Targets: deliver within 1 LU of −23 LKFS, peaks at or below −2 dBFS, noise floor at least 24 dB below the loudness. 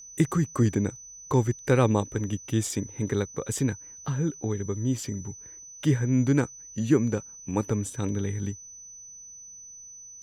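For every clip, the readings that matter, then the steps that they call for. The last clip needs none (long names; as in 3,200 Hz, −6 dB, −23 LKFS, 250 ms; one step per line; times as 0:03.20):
interfering tone 6,000 Hz; level of the tone −43 dBFS; integrated loudness −27.5 LKFS; sample peak −8.5 dBFS; target loudness −23.0 LKFS
→ notch filter 6,000 Hz, Q 30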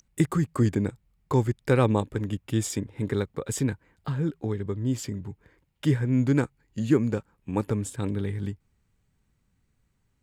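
interfering tone none found; integrated loudness −27.5 LKFS; sample peak −9.0 dBFS; target loudness −23.0 LKFS
→ level +4.5 dB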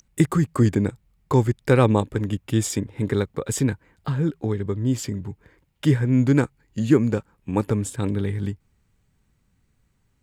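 integrated loudness −23.0 LKFS; sample peak −4.5 dBFS; background noise floor −67 dBFS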